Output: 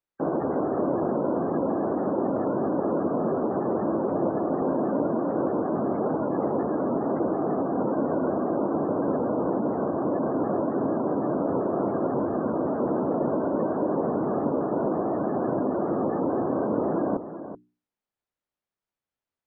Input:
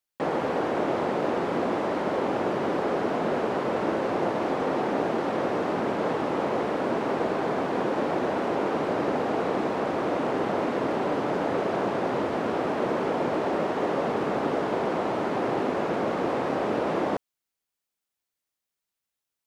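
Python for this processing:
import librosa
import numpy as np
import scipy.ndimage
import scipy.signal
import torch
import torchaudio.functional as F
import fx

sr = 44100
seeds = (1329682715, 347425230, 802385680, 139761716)

p1 = fx.lowpass(x, sr, hz=1200.0, slope=6)
p2 = fx.hum_notches(p1, sr, base_hz=60, count=7)
p3 = fx.spec_gate(p2, sr, threshold_db=-25, keep='strong')
p4 = fx.formant_shift(p3, sr, semitones=-3)
p5 = p4 + fx.echo_single(p4, sr, ms=380, db=-11.5, dry=0)
y = p5 * librosa.db_to_amplitude(2.0)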